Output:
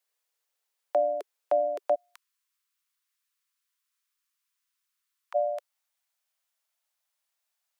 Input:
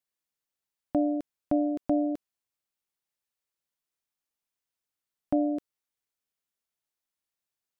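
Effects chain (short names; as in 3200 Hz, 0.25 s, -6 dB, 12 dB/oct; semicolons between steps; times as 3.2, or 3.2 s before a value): steep high-pass 400 Hz 72 dB/oct, from 1.94 s 990 Hz, from 5.34 s 560 Hz; gain +7 dB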